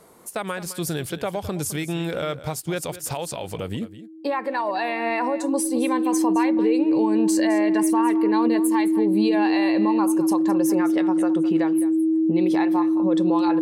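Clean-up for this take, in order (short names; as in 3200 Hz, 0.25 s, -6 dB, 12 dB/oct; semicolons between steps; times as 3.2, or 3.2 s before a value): notch 320 Hz, Q 30; inverse comb 0.212 s -14.5 dB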